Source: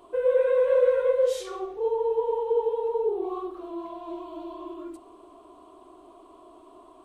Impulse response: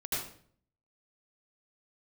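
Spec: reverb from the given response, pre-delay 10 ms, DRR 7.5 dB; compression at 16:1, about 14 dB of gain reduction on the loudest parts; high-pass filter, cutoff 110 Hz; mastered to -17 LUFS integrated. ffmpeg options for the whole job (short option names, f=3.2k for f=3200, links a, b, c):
-filter_complex "[0:a]highpass=110,acompressor=threshold=-31dB:ratio=16,asplit=2[a][b];[1:a]atrim=start_sample=2205,adelay=10[c];[b][c]afir=irnorm=-1:irlink=0,volume=-12.5dB[d];[a][d]amix=inputs=2:normalize=0,volume=18.5dB"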